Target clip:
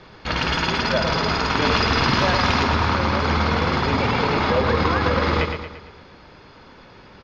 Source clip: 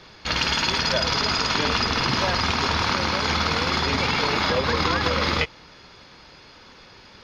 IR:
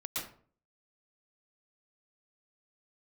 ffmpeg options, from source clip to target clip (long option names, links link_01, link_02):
-af "asetnsamples=nb_out_samples=441:pad=0,asendcmd='1.62 lowpass f 3000;2.63 lowpass f 1300',lowpass=frequency=1600:poles=1,aecho=1:1:114|228|342|456|570|684:0.473|0.227|0.109|0.0523|0.0251|0.0121,volume=4dB"